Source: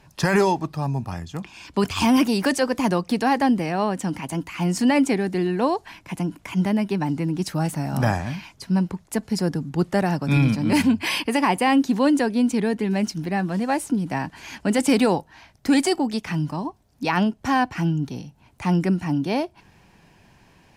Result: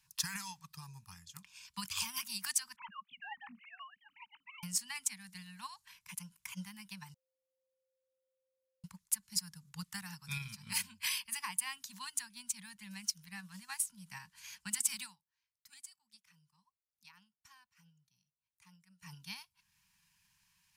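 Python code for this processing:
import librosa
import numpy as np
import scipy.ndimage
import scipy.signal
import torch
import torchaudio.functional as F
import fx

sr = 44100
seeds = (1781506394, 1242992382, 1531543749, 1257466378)

y = fx.sine_speech(x, sr, at=(2.76, 4.63))
y = fx.edit(y, sr, fx.bleep(start_s=7.14, length_s=1.7, hz=524.0, db=-19.5),
    fx.fade_down_up(start_s=15.02, length_s=4.11, db=-20.0, fade_s=0.14), tone=tone)
y = scipy.signal.sosfilt(scipy.signal.ellip(3, 1.0, 40, [190.0, 970.0], 'bandstop', fs=sr, output='sos'), y)
y = scipy.signal.lfilter([1.0, -0.9], [1.0], y)
y = fx.transient(y, sr, attack_db=8, sustain_db=-4)
y = F.gain(torch.from_numpy(y), -6.5).numpy()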